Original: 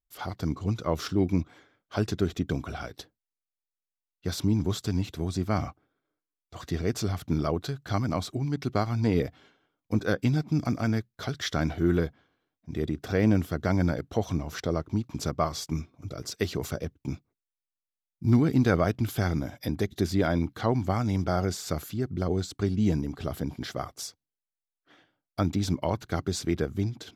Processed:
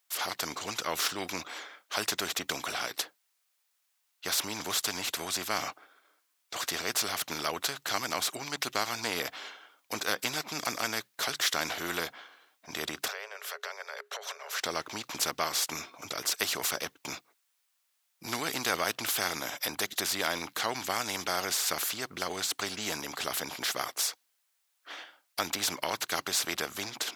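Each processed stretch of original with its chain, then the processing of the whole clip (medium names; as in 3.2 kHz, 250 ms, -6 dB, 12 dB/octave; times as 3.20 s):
13.08–14.61 s: compression 12:1, threshold -33 dBFS + rippled Chebyshev high-pass 400 Hz, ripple 9 dB
whole clip: high-pass 850 Hz 12 dB/octave; spectrum-flattening compressor 2:1; trim +4.5 dB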